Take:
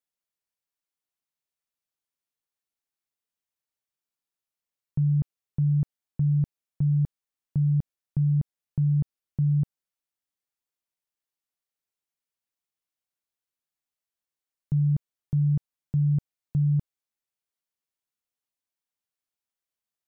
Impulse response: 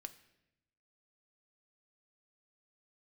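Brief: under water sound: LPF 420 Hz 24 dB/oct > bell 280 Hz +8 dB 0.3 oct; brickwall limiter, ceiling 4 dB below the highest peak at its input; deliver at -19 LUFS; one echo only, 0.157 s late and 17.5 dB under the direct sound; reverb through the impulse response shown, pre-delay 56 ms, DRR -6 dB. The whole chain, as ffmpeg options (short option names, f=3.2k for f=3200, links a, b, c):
-filter_complex "[0:a]alimiter=limit=-22.5dB:level=0:latency=1,aecho=1:1:157:0.133,asplit=2[a][b];[1:a]atrim=start_sample=2205,adelay=56[c];[b][c]afir=irnorm=-1:irlink=0,volume=11dB[d];[a][d]amix=inputs=2:normalize=0,lowpass=f=420:w=0.5412,lowpass=f=420:w=1.3066,equalizer=f=280:t=o:w=0.3:g=8,volume=2.5dB"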